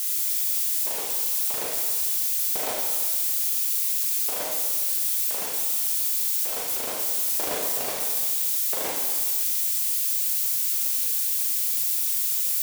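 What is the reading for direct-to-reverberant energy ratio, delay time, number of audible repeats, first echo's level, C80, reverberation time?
-1.0 dB, none, none, none, 4.0 dB, 1.7 s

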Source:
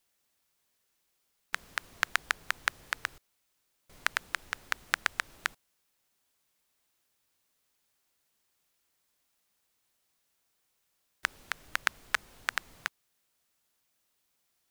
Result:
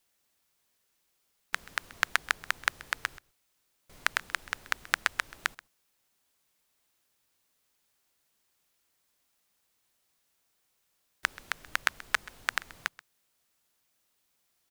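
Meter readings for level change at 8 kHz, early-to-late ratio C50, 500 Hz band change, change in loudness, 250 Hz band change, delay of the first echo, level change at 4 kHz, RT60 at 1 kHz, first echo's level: +1.5 dB, none, +1.5 dB, +1.5 dB, +1.5 dB, 0.131 s, +1.5 dB, none, -20.0 dB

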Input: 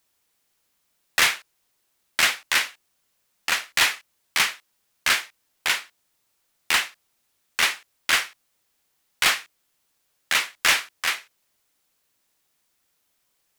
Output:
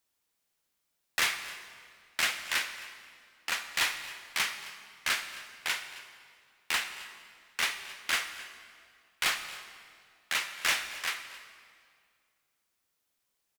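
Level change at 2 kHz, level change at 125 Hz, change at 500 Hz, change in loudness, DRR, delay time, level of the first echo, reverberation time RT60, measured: -8.5 dB, n/a, -8.5 dB, -9.0 dB, 8.5 dB, 0.265 s, -19.0 dB, 2.1 s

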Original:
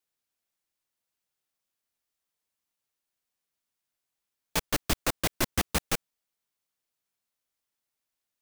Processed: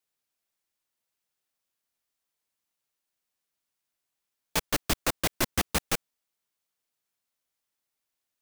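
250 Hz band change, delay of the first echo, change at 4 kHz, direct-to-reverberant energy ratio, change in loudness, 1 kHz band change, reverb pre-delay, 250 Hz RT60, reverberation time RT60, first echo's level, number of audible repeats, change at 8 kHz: 0.0 dB, none, +1.0 dB, none, +1.0 dB, +1.0 dB, none, none, none, none, none, +1.0 dB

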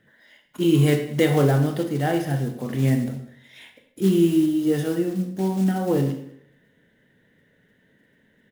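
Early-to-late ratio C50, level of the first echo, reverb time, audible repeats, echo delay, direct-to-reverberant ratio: 8.0 dB, -22.5 dB, 0.70 s, 1, 0.199 s, 5.0 dB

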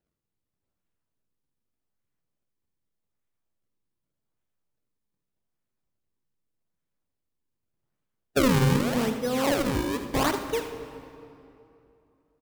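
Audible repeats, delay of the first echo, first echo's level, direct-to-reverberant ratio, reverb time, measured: 1, 80 ms, -11.5 dB, 6.5 dB, 2.8 s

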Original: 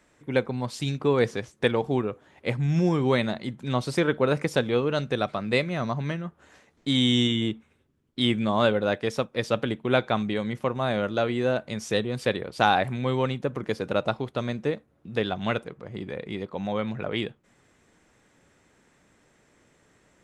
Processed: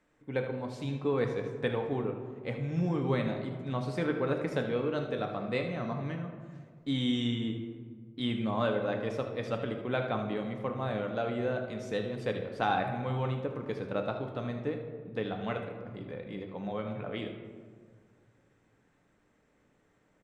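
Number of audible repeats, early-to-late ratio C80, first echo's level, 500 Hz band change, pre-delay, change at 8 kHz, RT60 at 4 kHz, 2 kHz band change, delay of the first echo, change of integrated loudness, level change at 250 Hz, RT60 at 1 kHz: 1, 8.0 dB, -11.5 dB, -6.5 dB, 4 ms, under -10 dB, 0.85 s, -8.5 dB, 76 ms, -7.0 dB, -6.5 dB, 1.6 s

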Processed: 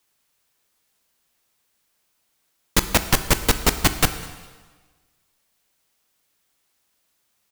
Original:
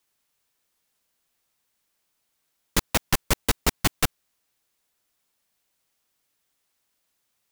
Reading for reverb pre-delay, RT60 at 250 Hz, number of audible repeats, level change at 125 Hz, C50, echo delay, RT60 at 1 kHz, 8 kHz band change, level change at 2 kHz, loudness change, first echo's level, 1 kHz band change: 7 ms, 1.4 s, 1, +5.0 dB, 11.5 dB, 0.203 s, 1.4 s, +5.0 dB, +5.0 dB, +4.5 dB, -23.0 dB, +5.0 dB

